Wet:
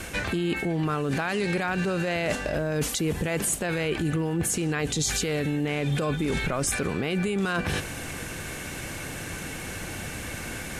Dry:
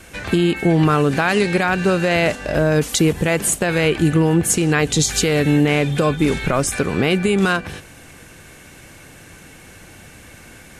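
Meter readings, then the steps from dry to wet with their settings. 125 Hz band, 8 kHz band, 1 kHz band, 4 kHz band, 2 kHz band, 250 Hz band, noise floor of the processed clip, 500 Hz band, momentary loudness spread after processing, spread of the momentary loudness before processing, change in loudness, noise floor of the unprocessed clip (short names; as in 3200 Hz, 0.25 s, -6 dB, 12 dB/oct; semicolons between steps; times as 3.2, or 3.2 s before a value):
-9.0 dB, -7.0 dB, -9.5 dB, -8.0 dB, -8.0 dB, -10.0 dB, -36 dBFS, -10.0 dB, 9 LU, 4 LU, -10.5 dB, -43 dBFS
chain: limiter -14.5 dBFS, peak gain reduction 9.5 dB; reverse; compressor 6:1, threshold -31 dBFS, peak gain reduction 12 dB; reverse; crackle 420/s -57 dBFS; gain +7 dB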